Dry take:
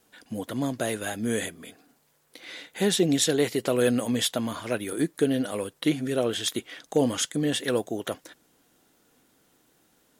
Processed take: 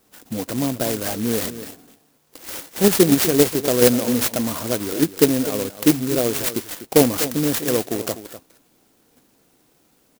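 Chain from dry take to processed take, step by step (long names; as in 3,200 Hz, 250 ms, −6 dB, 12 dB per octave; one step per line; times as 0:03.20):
in parallel at 0 dB: output level in coarse steps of 21 dB
on the sum: single-tap delay 248 ms −13 dB
converter with an unsteady clock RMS 0.14 ms
level +4 dB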